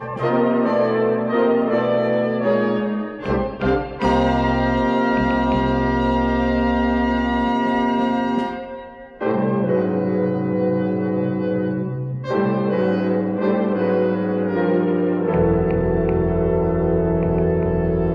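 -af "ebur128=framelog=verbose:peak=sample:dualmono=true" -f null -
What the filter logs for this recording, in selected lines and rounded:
Integrated loudness:
  I:         -16.7 LUFS
  Threshold: -26.8 LUFS
Loudness range:
  LRA:         2.2 LU
  Threshold: -37.0 LUFS
  LRA low:   -18.2 LUFS
  LRA high:  -16.0 LUFS
Sample peak:
  Peak:       -6.3 dBFS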